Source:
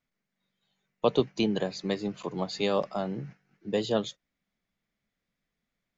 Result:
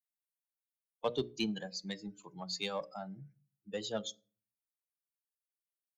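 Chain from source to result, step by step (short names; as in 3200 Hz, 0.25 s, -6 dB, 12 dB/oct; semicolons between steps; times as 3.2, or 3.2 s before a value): per-bin expansion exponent 2; vibrato 0.71 Hz 12 cents; in parallel at -6.5 dB: soft clip -28.5 dBFS, distortion -7 dB; on the sum: high shelf 3200 Hz +10.5 dB; notches 60/120/180/240/300/360/420/480/540/600 Hz; on a send at -21 dB: reverb RT60 0.45 s, pre-delay 4 ms; on the sum: gain -8.5 dB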